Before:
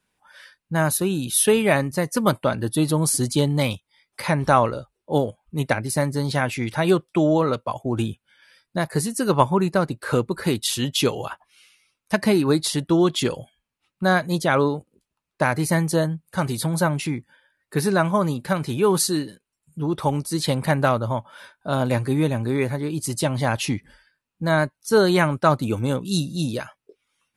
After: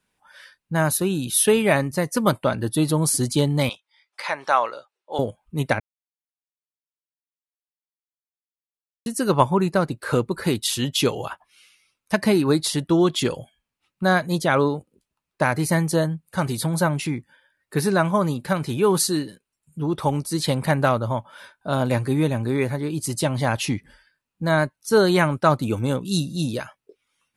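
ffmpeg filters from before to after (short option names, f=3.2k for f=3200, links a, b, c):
-filter_complex "[0:a]asettb=1/sr,asplit=3[a][b][c];[a]atrim=end=3.694[d];[b]atrim=start=3.69:end=5.19,asetpts=PTS-STARTPTS,afade=t=in:d=0.004:c=qsin,afade=t=out:st=1.496:d=0.004:c=qsin,highpass=720,lowpass=6.3k[e];[c]atrim=start=5.186[f];[d][e]acrossfade=d=0.004:c1=hsin:c2=qsin[g];[g][f]acrossfade=d=0.004:c1=qsin:c2=hsin,asplit=3[h][i][j];[h]atrim=end=5.8,asetpts=PTS-STARTPTS,afade=t=out:st=5.796:d=0.004:c=hsin[k];[i]atrim=start=5.8:end=9.06,asetpts=PTS-STARTPTS,volume=0[l];[j]atrim=start=9.06,asetpts=PTS-STARTPTS,afade=t=in:d=0.004:c=hsin[m];[k][l][m]concat=n=3:v=0:a=1"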